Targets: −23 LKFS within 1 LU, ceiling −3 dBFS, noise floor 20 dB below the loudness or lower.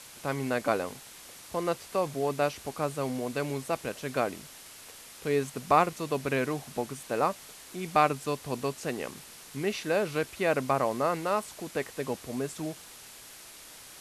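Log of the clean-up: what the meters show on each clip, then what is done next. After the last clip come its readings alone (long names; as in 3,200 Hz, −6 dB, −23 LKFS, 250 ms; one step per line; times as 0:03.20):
background noise floor −49 dBFS; target noise floor −51 dBFS; integrated loudness −30.5 LKFS; sample peak −10.0 dBFS; target loudness −23.0 LKFS
→ broadband denoise 6 dB, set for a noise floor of −49 dBFS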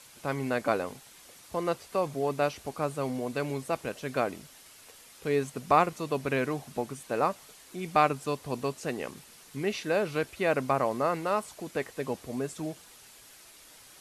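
background noise floor −54 dBFS; integrated loudness −31.0 LKFS; sample peak −10.0 dBFS; target loudness −23.0 LKFS
→ level +8 dB
brickwall limiter −3 dBFS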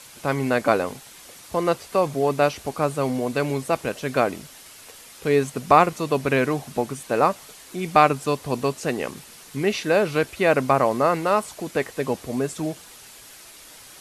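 integrated loudness −23.0 LKFS; sample peak −3.0 dBFS; background noise floor −46 dBFS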